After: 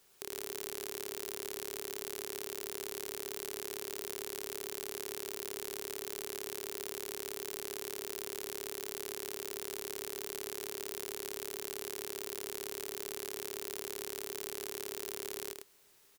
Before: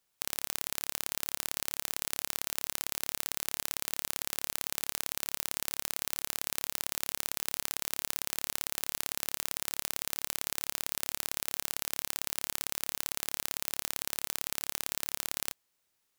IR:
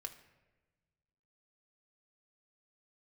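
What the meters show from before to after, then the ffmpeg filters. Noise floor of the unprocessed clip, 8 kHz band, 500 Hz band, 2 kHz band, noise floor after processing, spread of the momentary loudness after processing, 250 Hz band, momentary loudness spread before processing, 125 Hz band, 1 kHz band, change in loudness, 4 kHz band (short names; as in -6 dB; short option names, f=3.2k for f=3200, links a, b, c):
-78 dBFS, -6.5 dB, +7.5 dB, -6.5 dB, -49 dBFS, 0 LU, +1.5 dB, 0 LU, -6.0 dB, -5.0 dB, -6.0 dB, -6.5 dB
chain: -af "equalizer=f=400:t=o:w=0.3:g=11.5,alimiter=limit=-12.5dB:level=0:latency=1:release=124,asoftclip=type=tanh:threshold=-25dB,aecho=1:1:103:0.562,volume=11.5dB"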